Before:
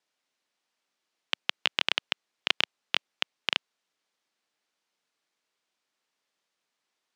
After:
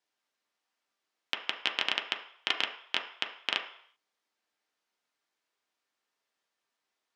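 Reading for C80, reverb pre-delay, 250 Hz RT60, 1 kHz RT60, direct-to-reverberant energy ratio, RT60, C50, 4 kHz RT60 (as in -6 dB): 12.0 dB, 3 ms, 0.45 s, 0.65 s, 1.0 dB, 0.60 s, 9.0 dB, 0.65 s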